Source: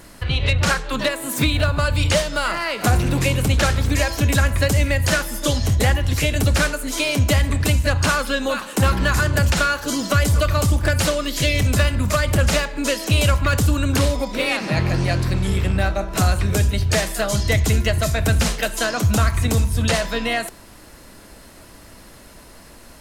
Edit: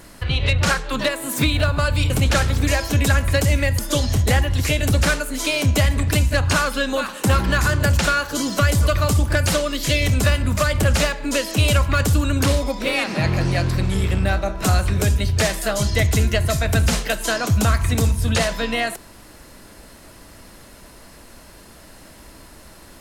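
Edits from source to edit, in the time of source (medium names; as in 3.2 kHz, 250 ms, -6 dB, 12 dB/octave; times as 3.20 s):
2.10–3.38 s: delete
5.07–5.32 s: delete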